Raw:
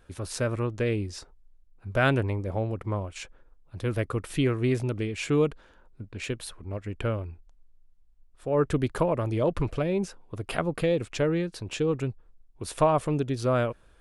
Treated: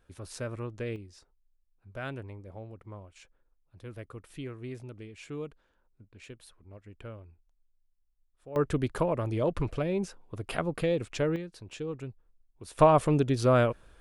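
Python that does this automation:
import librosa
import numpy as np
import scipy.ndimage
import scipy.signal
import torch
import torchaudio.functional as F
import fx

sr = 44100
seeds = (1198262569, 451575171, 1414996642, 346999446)

y = fx.gain(x, sr, db=fx.steps((0.0, -8.5), (0.96, -15.0), (8.56, -3.0), (11.36, -10.0), (12.79, 2.0)))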